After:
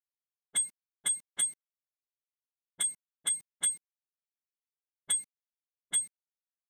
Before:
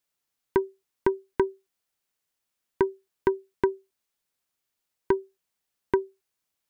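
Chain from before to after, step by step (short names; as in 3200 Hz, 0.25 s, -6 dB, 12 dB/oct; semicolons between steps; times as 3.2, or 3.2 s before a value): spectrum mirrored in octaves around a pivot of 1800 Hz; sample gate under -48 dBFS; low-pass opened by the level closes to 350 Hz, open at -30 dBFS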